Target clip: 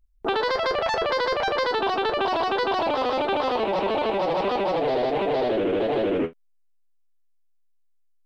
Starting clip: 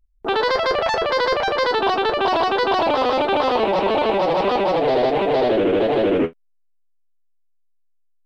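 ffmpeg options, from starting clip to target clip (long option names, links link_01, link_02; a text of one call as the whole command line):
ffmpeg -i in.wav -af "acompressor=threshold=-21dB:ratio=6" out.wav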